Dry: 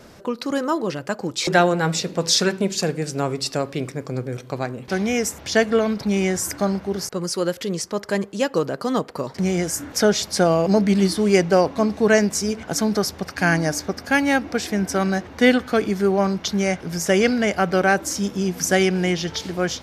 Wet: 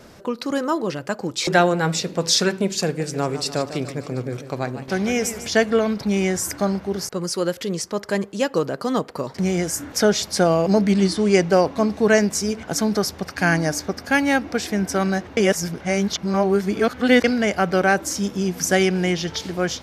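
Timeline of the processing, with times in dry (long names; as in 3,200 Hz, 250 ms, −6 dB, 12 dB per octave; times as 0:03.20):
0:02.85–0:05.49: feedback echo with a swinging delay time 146 ms, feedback 58%, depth 116 cents, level −12 dB
0:10.93–0:11.42: low-pass filter 9,300 Hz 24 dB per octave
0:15.37–0:17.24: reverse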